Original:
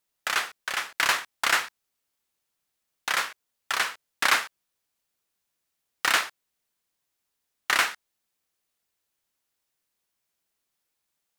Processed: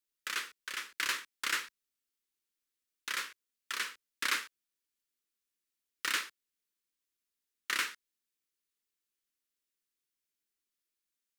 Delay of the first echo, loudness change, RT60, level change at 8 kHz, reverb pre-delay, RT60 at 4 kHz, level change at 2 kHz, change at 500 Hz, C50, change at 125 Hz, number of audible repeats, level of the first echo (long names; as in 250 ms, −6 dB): no echo audible, −10.0 dB, no reverb audible, −8.0 dB, no reverb audible, no reverb audible, −10.0 dB, −15.0 dB, no reverb audible, can't be measured, no echo audible, no echo audible